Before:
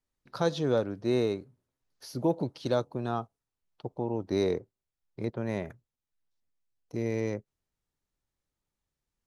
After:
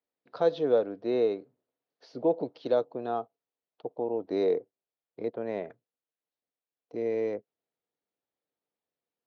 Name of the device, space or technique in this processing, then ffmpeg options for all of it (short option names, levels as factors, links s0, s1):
kitchen radio: -af "highpass=220,equalizer=f=290:t=q:w=4:g=4,equalizer=f=470:t=q:w=4:g=10,equalizer=f=690:t=q:w=4:g=8,lowpass=f=4300:w=0.5412,lowpass=f=4300:w=1.3066,volume=0.596"